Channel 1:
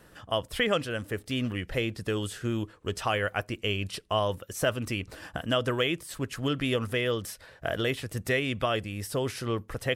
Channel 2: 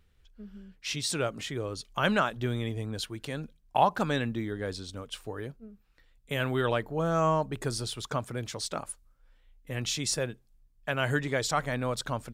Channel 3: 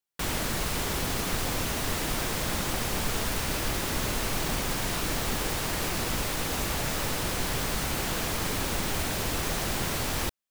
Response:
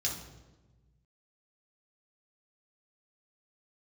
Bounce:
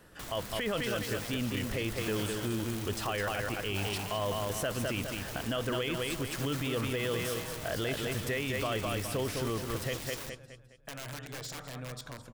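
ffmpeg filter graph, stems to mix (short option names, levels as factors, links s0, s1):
-filter_complex "[0:a]volume=0.794,asplit=2[s0][s1];[s1]volume=0.501[s2];[1:a]bandreject=f=400:w=12,volume=0.447,asplit=3[s3][s4][s5];[s4]volume=0.126[s6];[s5]volume=0.119[s7];[2:a]flanger=delay=6.3:depth=7.1:regen=83:speed=1.6:shape=triangular,volume=0.596[s8];[s3][s8]amix=inputs=2:normalize=0,aeval=exprs='(mod(33.5*val(0)+1,2)-1)/33.5':c=same,acompressor=threshold=0.00708:ratio=2.5,volume=1[s9];[3:a]atrim=start_sample=2205[s10];[s6][s10]afir=irnorm=-1:irlink=0[s11];[s2][s7]amix=inputs=2:normalize=0,aecho=0:1:207|414|621|828|1035:1|0.39|0.152|0.0593|0.0231[s12];[s0][s9][s11][s12]amix=inputs=4:normalize=0,alimiter=limit=0.0668:level=0:latency=1:release=11"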